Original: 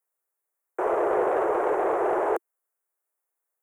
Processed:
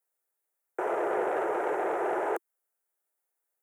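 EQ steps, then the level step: HPF 170 Hz 12 dB/oct; notch 1100 Hz, Q 6.9; dynamic EQ 510 Hz, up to -6 dB, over -35 dBFS, Q 0.74; 0.0 dB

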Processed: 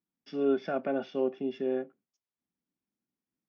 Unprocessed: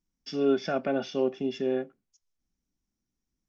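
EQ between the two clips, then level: BPF 180–4300 Hz; high shelf 3200 Hz -10.5 dB; -2.0 dB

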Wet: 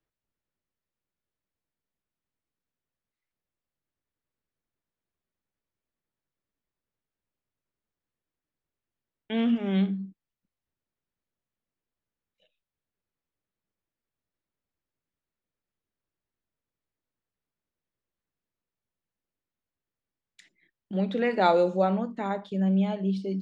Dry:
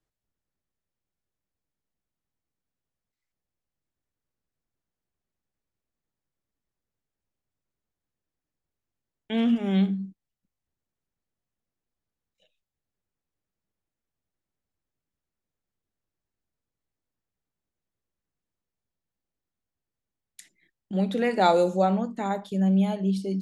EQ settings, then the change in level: LPF 3700 Hz 12 dB/oct; low shelf 180 Hz -5 dB; bell 770 Hz -3.5 dB 0.25 oct; 0.0 dB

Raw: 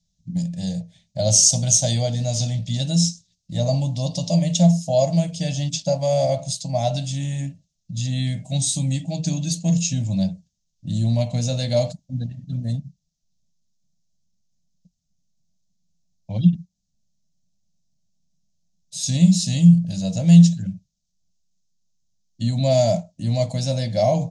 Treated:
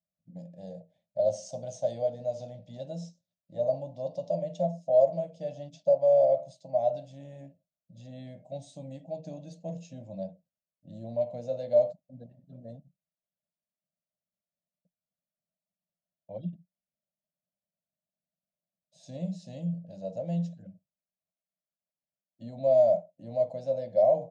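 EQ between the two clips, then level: band-pass 560 Hz, Q 3.6; 0.0 dB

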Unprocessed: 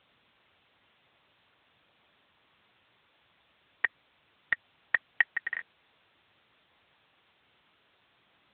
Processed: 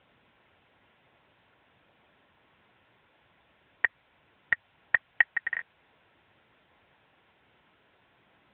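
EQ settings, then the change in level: notch 1200 Hz, Q 9.8; dynamic EQ 300 Hz, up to -6 dB, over -58 dBFS, Q 0.72; air absorption 430 m; +7.0 dB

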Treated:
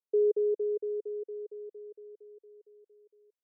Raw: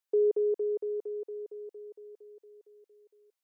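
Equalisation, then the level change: band-pass 430 Hz, Q 2.7; 0.0 dB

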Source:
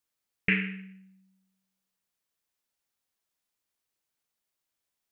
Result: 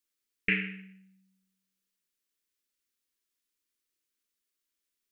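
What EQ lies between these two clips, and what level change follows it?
fixed phaser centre 310 Hz, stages 4; 0.0 dB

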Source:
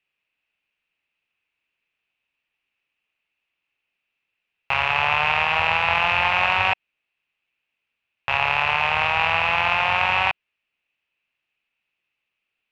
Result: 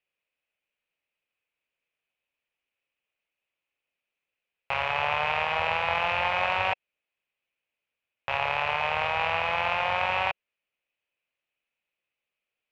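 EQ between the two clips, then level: bell 540 Hz +8.5 dB 0.66 oct; notch 2700 Hz, Q 19; -7.0 dB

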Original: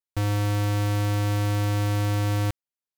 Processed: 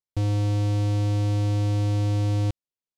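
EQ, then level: air absorption 71 m; bell 1500 Hz -13 dB 1.6 oct; +1.5 dB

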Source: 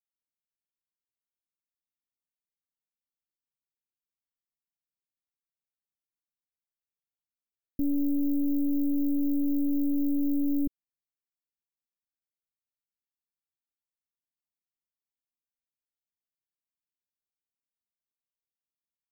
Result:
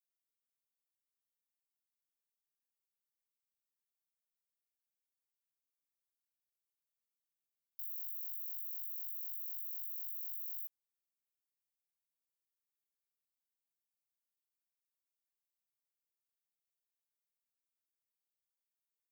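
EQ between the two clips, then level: HPF 1300 Hz 24 dB/oct; differentiator; -2.5 dB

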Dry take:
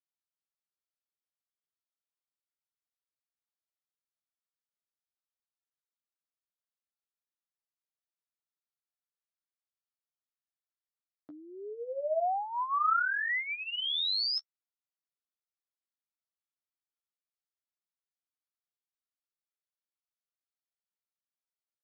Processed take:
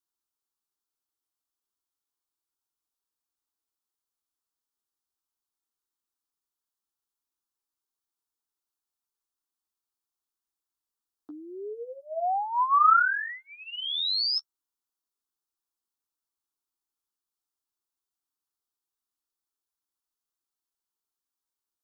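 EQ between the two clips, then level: dynamic EQ 1400 Hz, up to +4 dB, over -37 dBFS, Q 1.6; fixed phaser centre 580 Hz, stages 6; +6.5 dB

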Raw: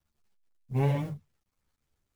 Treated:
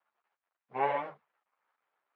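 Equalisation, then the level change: BPF 700–2600 Hz; air absorption 150 m; bell 980 Hz +11 dB 2.9 oct; 0.0 dB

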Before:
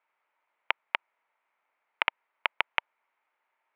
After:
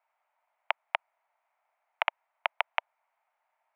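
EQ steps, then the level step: ladder high-pass 620 Hz, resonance 65%; +7.0 dB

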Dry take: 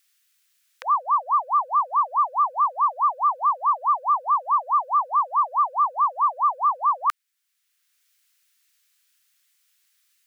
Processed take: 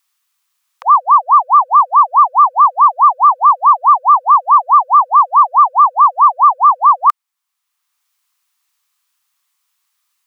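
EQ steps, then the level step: band shelf 930 Hz +14.5 dB 1 oct; -1.5 dB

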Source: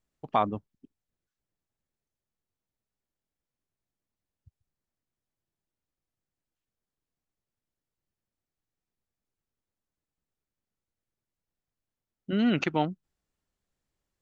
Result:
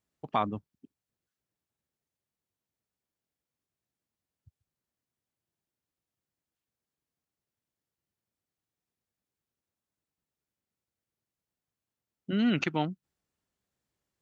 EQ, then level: HPF 73 Hz; dynamic EQ 590 Hz, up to -5 dB, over -39 dBFS, Q 0.77; 0.0 dB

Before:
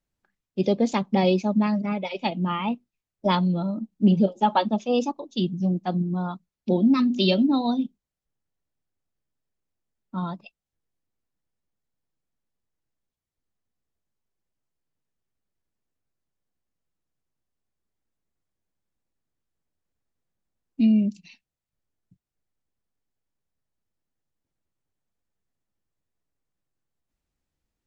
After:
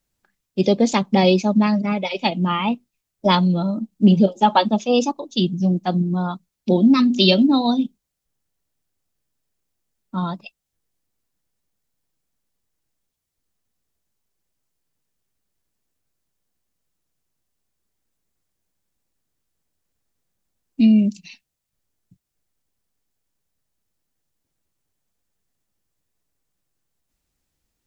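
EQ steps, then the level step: high shelf 3800 Hz +8 dB; +5.0 dB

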